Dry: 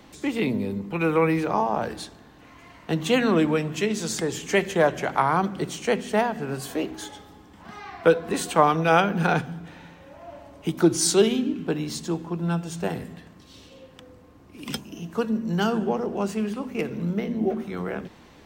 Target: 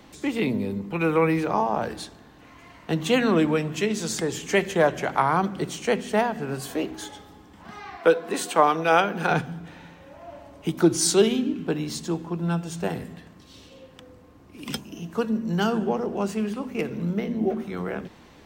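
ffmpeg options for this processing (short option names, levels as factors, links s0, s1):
-filter_complex "[0:a]asettb=1/sr,asplit=3[s0][s1][s2];[s0]atrim=end=7.974[s3];[s1]atrim=start=7.97:end=9.31,asetpts=PTS-STARTPTS,afade=t=in:d=0.004:c=qsin,afade=t=out:st=1.336:d=0.004:c=qsin,highpass=260[s4];[s2]atrim=start=9.306[s5];[s3][s4]acrossfade=d=0.004:c1=hsin:c2=qsin[s6];[s6][s5]acrossfade=d=0.004:c1=qsin:c2=hsin"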